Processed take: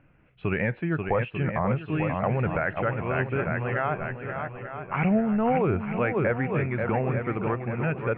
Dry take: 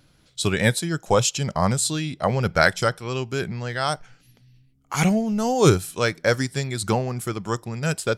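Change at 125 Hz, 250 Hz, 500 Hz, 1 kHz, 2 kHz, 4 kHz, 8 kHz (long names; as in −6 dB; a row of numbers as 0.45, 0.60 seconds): −3.0 dB, −2.0 dB, −3.5 dB, −3.0 dB, −4.0 dB, below −20 dB, below −40 dB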